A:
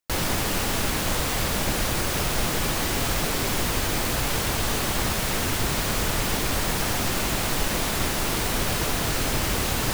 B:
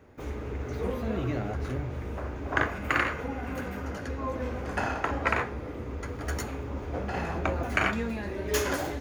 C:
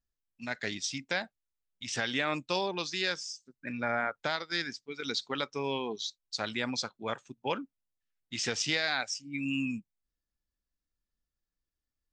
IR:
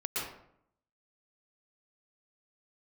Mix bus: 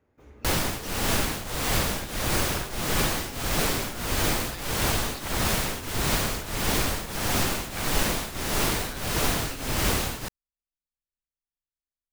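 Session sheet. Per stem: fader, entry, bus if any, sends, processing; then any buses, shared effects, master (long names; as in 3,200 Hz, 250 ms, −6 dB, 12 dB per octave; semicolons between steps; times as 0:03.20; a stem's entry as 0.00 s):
+2.0 dB, 0.35 s, no send, shaped tremolo triangle 1.6 Hz, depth 85%
−15.0 dB, 0.00 s, no send, no processing
−14.0 dB, 0.00 s, no send, no processing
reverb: not used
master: no processing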